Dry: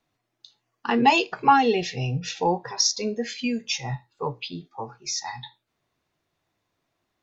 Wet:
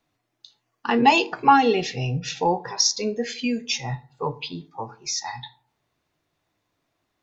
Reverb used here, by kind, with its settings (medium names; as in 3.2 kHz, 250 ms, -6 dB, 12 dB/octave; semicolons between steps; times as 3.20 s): FDN reverb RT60 0.59 s, low-frequency decay 1.2×, high-frequency decay 0.4×, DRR 16 dB; trim +1.5 dB